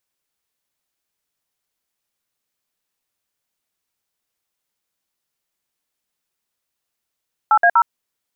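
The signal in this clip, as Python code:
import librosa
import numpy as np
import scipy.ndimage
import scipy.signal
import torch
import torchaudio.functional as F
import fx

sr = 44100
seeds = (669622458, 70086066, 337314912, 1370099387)

y = fx.dtmf(sr, digits='8A0', tone_ms=66, gap_ms=56, level_db=-12.0)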